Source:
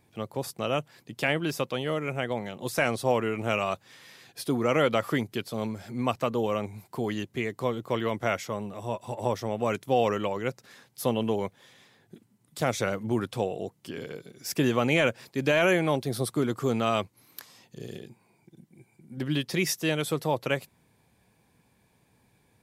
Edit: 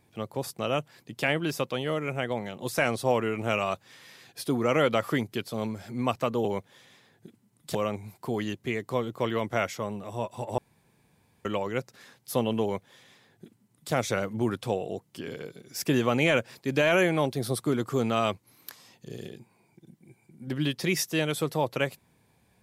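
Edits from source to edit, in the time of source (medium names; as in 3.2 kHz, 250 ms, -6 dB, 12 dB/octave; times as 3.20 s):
9.28–10.15 s: room tone
11.33–12.63 s: copy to 6.45 s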